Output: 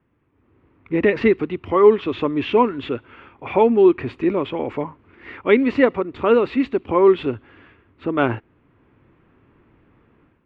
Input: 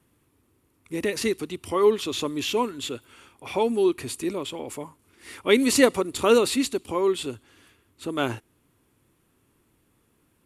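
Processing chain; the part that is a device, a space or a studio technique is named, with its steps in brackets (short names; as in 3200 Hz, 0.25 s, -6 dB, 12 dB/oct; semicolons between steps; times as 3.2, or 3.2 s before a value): action camera in a waterproof case (LPF 2400 Hz 24 dB/oct; AGC gain up to 12 dB; gain -1 dB; AAC 96 kbps 48000 Hz)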